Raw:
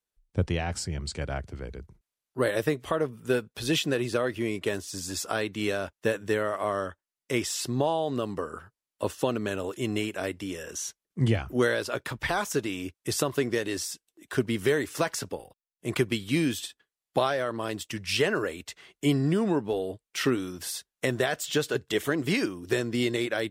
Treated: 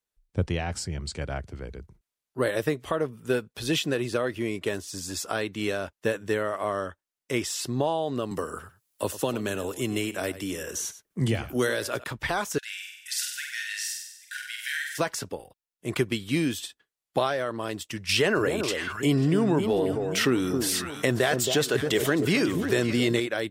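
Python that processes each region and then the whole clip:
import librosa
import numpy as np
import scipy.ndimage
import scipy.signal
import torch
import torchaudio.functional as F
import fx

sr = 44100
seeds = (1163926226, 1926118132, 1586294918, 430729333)

y = fx.chain(x, sr, fx.high_shelf(hz=7800.0, db=11.0),
    fx.echo_single(ms=97, db=-15.5),
    fx.band_squash(depth_pct=40), at=(8.31, 12.04))
y = fx.chain(y, sr, fx.brickwall_highpass(low_hz=1400.0),
    fx.room_flutter(wall_m=8.2, rt60_s=0.89), at=(12.58, 14.98))
y = fx.chain(y, sr, fx.echo_alternate(ms=271, hz=1100.0, feedback_pct=56, wet_db=-9),
    fx.env_flatten(amount_pct=50), at=(18.09, 23.2))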